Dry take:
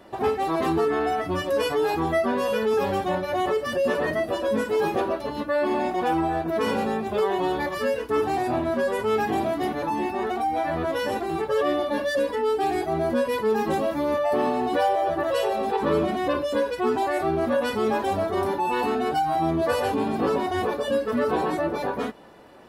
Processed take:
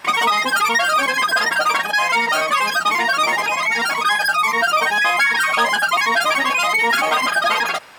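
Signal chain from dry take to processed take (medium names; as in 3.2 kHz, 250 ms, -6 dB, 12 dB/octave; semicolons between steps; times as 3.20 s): wide varispeed 2.84×; trim +6.5 dB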